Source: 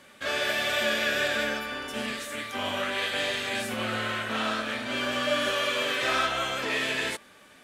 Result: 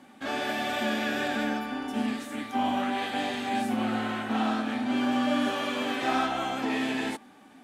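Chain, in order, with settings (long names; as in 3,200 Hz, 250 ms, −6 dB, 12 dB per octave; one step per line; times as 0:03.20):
hollow resonant body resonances 260/770 Hz, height 18 dB, ringing for 30 ms
level −7 dB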